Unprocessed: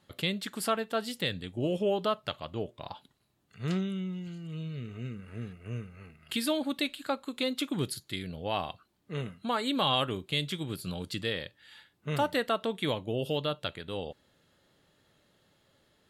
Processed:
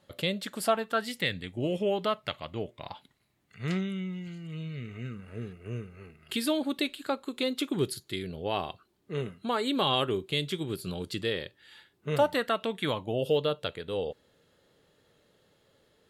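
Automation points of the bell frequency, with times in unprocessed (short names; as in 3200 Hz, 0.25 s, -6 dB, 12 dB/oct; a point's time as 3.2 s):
bell +9 dB 0.39 oct
0.62 s 560 Hz
1.07 s 2100 Hz
5.01 s 2100 Hz
5.41 s 390 Hz
12.1 s 390 Hz
12.62 s 2700 Hz
13.3 s 460 Hz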